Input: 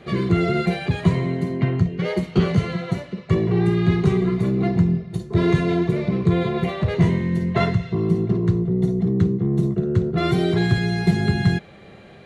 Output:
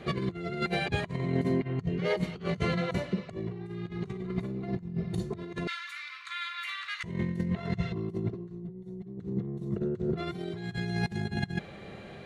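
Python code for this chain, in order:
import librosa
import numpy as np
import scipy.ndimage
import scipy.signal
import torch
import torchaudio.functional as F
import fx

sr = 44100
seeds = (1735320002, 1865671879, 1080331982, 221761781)

y = fx.ellip_highpass(x, sr, hz=1300.0, order=4, stop_db=60, at=(5.67, 7.04))
y = fx.comb(y, sr, ms=5.5, depth=0.73, at=(8.34, 9.18))
y = fx.over_compress(y, sr, threshold_db=-25.0, ratio=-0.5)
y = y * 10.0 ** (-6.5 / 20.0)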